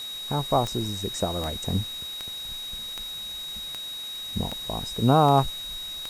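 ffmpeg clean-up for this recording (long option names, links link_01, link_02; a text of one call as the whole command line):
ffmpeg -i in.wav -af "adeclick=threshold=4,bandreject=frequency=3800:width=30,afwtdn=0.0063" out.wav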